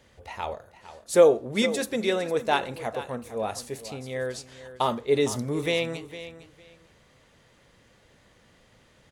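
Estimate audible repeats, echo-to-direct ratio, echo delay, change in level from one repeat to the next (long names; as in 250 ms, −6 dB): 2, −14.0 dB, 457 ms, −14.0 dB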